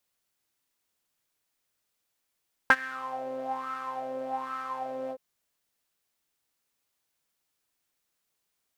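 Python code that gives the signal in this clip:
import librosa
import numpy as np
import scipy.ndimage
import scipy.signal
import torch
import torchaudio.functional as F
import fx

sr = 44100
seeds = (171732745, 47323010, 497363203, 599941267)

y = fx.sub_patch_wobble(sr, seeds[0], note=60, wave='saw', wave2='saw', interval_st=0, level2_db=-9.0, sub_db=-16, noise_db=-7.0, kind='bandpass', cutoff_hz=560.0, q=8.7, env_oct=1.5, env_decay_s=0.27, env_sustain_pct=40, attack_ms=1.7, decay_s=0.05, sustain_db=-20.5, release_s=0.06, note_s=2.41, lfo_hz=1.2, wobble_oct=0.6)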